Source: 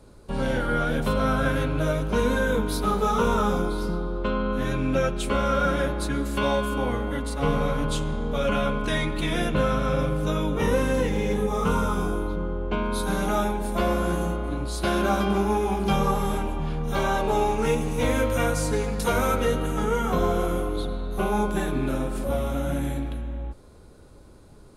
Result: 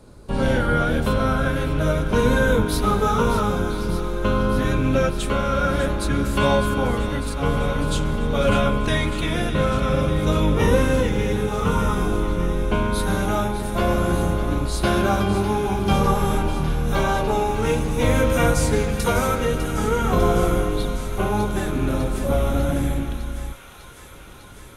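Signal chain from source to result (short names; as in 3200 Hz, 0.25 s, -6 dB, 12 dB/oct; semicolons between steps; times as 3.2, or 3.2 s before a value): octaver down 1 oct, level -3 dB; tremolo triangle 0.5 Hz, depth 40%; thin delay 0.601 s, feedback 78%, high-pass 1700 Hz, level -10 dB; gain +5 dB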